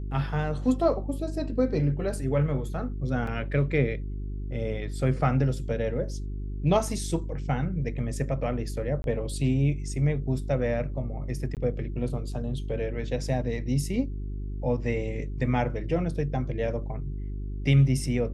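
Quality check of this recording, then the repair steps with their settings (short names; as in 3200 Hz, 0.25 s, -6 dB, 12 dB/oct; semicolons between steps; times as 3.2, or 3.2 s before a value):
hum 50 Hz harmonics 8 -33 dBFS
3.27 gap 3.7 ms
9.02–9.04 gap 21 ms
11.55–11.57 gap 18 ms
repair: de-hum 50 Hz, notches 8; interpolate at 3.27, 3.7 ms; interpolate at 9.02, 21 ms; interpolate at 11.55, 18 ms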